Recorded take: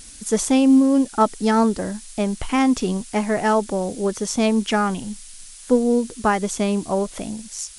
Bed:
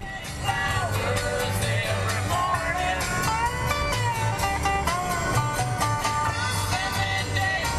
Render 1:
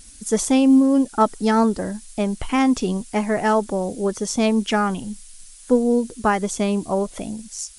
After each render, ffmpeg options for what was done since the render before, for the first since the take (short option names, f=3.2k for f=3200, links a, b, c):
-af "afftdn=nr=6:nf=-42"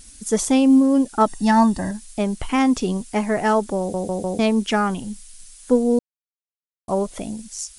-filter_complex "[0:a]asettb=1/sr,asplit=3[a][b][c];[a]atrim=end=1.274[d];[b]atrim=start=1.27:end=1.91,asetpts=PTS-STARTPTS,afade=t=in:d=0.004:c=qsin,afade=t=out:st=0.636:d=0.004:c=qsin,aecho=1:1:1.1:0.8,atrim=end_sample=28224[e];[c]atrim=start=1.906[f];[d][e]acrossfade=d=0.004:c1=hsin:c2=qsin[g];[g][f]acrossfade=d=0.004:c1=qsin:c2=hsin,asplit=7[h][i][j][k][l][m][n];[h]atrim=end=3.942[o];[i]atrim=start=3.788:end=3.942[p];[j]atrim=start=3.788:end=3.942[q];[k]atrim=start=3.788:end=3.942[r];[l]atrim=start=4.388:end=5.99,asetpts=PTS-STARTPTS,afade=t=out:st=1.598:d=0.004:c=hsin[s];[m]atrim=start=5.99:end=6.88,asetpts=PTS-STARTPTS,volume=0[t];[n]atrim=start=6.88,asetpts=PTS-STARTPTS,afade=t=in:d=0.004:c=hsin[u];[o][p]acrossfade=d=0.004:c1=hsin:c2=hsin[v];[v][q]acrossfade=d=0.004:c1=hsin:c2=hsin[w];[w][r]acrossfade=d=0.004:c1=hsin:c2=hsin[x];[s][t][u]concat=n=3:v=0:a=1[y];[x][y]acrossfade=d=0.004:c1=hsin:c2=hsin"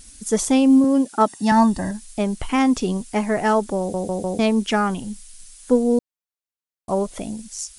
-filter_complex "[0:a]asettb=1/sr,asplit=3[a][b][c];[a]atrim=end=0.844[d];[b]atrim=start=0.84:end=1.52,asetpts=PTS-STARTPTS,afade=t=in:d=0.004:c=qsin,afade=t=out:st=0.676:d=0.004:c=qsin,highpass=170[e];[c]atrim=start=1.516[f];[d][e]acrossfade=d=0.004:c1=hsin:c2=qsin[g];[g][f]acrossfade=d=0.004:c1=qsin:c2=hsin"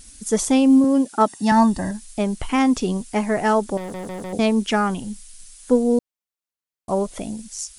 -filter_complex "[0:a]asettb=1/sr,asplit=3[a][b][c];[a]atrim=end=3.774[d];[b]atrim=start=3.77:end=4.33,asetpts=PTS-STARTPTS,afade=t=in:d=0.004:c=qsin,afade=t=out:st=0.556:d=0.004:c=qsin,asoftclip=type=hard:threshold=-29.5dB[e];[c]atrim=start=4.326[f];[d][e]acrossfade=d=0.004:c1=hsin:c2=qsin[g];[g][f]acrossfade=d=0.004:c1=qsin:c2=hsin"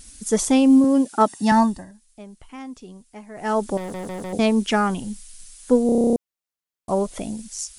-filter_complex "[0:a]asplit=13[a][b][c][d][e][f][g][h][i][j][k][l][m];[a]atrim=end=1.86,asetpts=PTS-STARTPTS,afade=t=out:st=1.54:d=0.32:silence=0.11885[n];[b]atrim=start=1.86:end=3.34,asetpts=PTS-STARTPTS,volume=-18.5dB[o];[c]atrim=start=3.34:end=5.892,asetpts=PTS-STARTPTS,afade=t=in:d=0.32:silence=0.11885[p];[d]atrim=start=5.858:end=5.892[q];[e]atrim=start=5.858:end=5.892[r];[f]atrim=start=5.858:end=5.892[s];[g]atrim=start=5.858:end=5.892[t];[h]atrim=start=5.858:end=5.892[u];[i]atrim=start=5.858:end=5.892[v];[j]atrim=start=5.858:end=5.892[w];[k]atrim=start=5.858:end=5.892[x];[l]atrim=start=5.858:end=5.892[y];[m]atrim=start=6.158[z];[n][o][p]concat=n=3:v=0:a=1[aa];[aa][q]acrossfade=d=0.004:c1=hsin:c2=hsin[ab];[ab][r]acrossfade=d=0.004:c1=hsin:c2=hsin[ac];[ac][s]acrossfade=d=0.004:c1=hsin:c2=hsin[ad];[ad][t]acrossfade=d=0.004:c1=hsin:c2=hsin[ae];[ae][u]acrossfade=d=0.004:c1=hsin:c2=hsin[af];[af][v]acrossfade=d=0.004:c1=hsin:c2=hsin[ag];[ag][w]acrossfade=d=0.004:c1=hsin:c2=hsin[ah];[ah][x]acrossfade=d=0.004:c1=hsin:c2=hsin[ai];[ai][y]acrossfade=d=0.004:c1=hsin:c2=hsin[aj];[aj][z]acrossfade=d=0.004:c1=hsin:c2=hsin"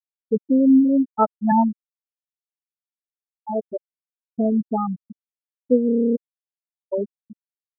-af "lowpass=f=3.2k:p=1,afftfilt=real='re*gte(hypot(re,im),0.562)':imag='im*gte(hypot(re,im),0.562)':win_size=1024:overlap=0.75"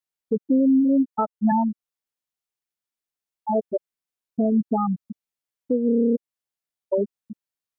-filter_complex "[0:a]asplit=2[a][b];[b]acompressor=threshold=-25dB:ratio=6,volume=-3dB[c];[a][c]amix=inputs=2:normalize=0,alimiter=limit=-13dB:level=0:latency=1:release=228"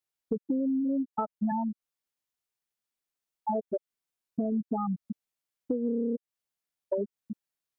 -af "acompressor=threshold=-27dB:ratio=6"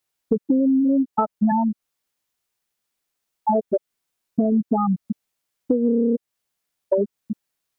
-af "volume=10dB"